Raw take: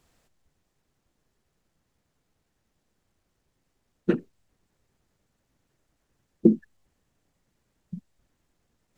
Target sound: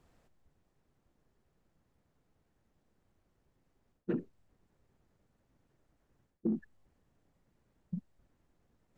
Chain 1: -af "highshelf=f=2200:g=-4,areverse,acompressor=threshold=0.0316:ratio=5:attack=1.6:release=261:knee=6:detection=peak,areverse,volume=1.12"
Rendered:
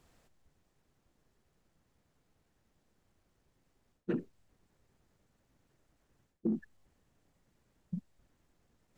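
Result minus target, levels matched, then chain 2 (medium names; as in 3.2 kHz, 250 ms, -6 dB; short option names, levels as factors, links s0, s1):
2 kHz band +2.5 dB
-af "highshelf=f=2200:g=-11.5,areverse,acompressor=threshold=0.0316:ratio=5:attack=1.6:release=261:knee=6:detection=peak,areverse,volume=1.12"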